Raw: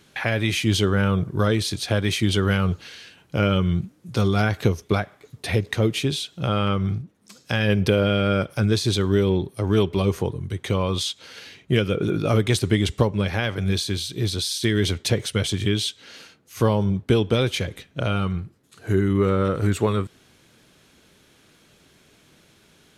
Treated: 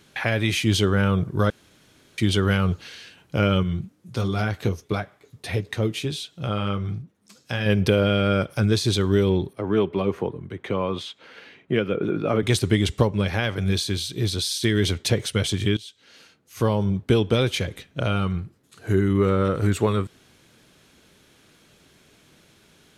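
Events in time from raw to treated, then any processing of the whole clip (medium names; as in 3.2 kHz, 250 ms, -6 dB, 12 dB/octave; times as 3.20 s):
1.50–2.18 s: room tone
3.63–7.66 s: flange 1.5 Hz, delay 6 ms, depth 5.2 ms, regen -53%
9.53–12.43 s: three-band isolator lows -13 dB, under 160 Hz, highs -17 dB, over 2.8 kHz
15.77–17.38 s: fade in equal-power, from -20 dB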